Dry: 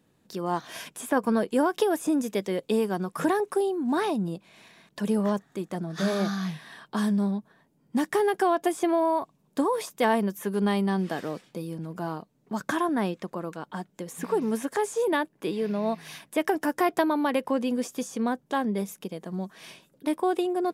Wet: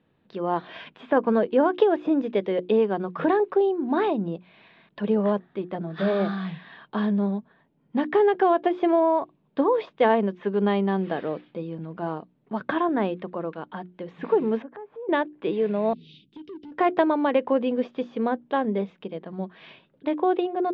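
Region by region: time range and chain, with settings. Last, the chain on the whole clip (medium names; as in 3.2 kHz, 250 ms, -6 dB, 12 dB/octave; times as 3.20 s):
14.62–15.09 s: low-pass 1.3 kHz + compression 2.5:1, threshold -44 dBFS
15.93–16.72 s: inverse Chebyshev band-stop 760–1600 Hz, stop band 60 dB + compression 4:1, threshold -36 dBFS + hard clipper -35.5 dBFS
whole clip: steep low-pass 3.6 kHz 36 dB/octave; hum notches 60/120/180/240/300/360 Hz; dynamic bell 500 Hz, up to +6 dB, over -39 dBFS, Q 1.1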